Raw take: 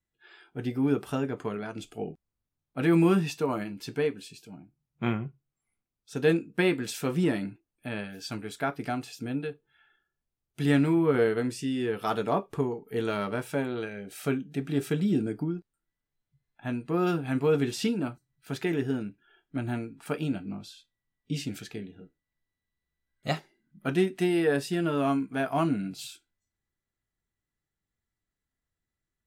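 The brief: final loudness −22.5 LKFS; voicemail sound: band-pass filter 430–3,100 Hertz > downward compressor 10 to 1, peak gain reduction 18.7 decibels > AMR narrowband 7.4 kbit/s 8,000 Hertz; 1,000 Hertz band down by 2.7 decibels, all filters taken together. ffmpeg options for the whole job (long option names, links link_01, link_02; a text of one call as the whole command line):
ffmpeg -i in.wav -af "highpass=430,lowpass=3100,equalizer=frequency=1000:width_type=o:gain=-3.5,acompressor=threshold=-40dB:ratio=10,volume=24dB" -ar 8000 -c:a libopencore_amrnb -b:a 7400 out.amr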